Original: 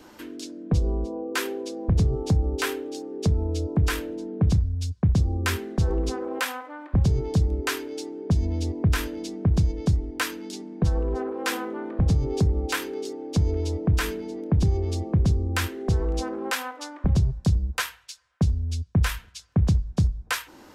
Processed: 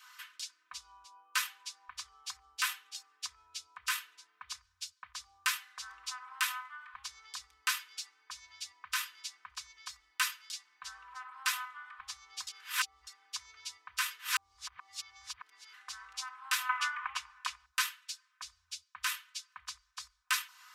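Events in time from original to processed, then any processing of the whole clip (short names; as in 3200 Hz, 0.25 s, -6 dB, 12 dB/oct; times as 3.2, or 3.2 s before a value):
12.47–13.07 reverse
14.19–15.74 reverse
16.69–17.66 band shelf 1500 Hz +15 dB 2.3 oct
whole clip: elliptic high-pass 1100 Hz, stop band 50 dB; comb 4 ms, depth 73%; dynamic EQ 1600 Hz, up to -4 dB, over -42 dBFS, Q 1; gain -2.5 dB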